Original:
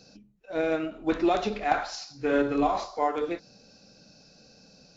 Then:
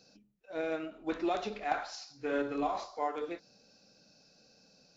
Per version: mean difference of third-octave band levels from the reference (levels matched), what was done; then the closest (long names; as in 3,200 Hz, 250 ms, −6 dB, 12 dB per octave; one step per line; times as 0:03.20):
1.0 dB: low-shelf EQ 180 Hz −8 dB
level −7 dB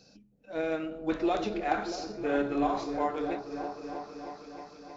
5.5 dB: echo whose low-pass opens from repeat to repeat 316 ms, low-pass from 400 Hz, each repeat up 1 octave, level −6 dB
level −4.5 dB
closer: first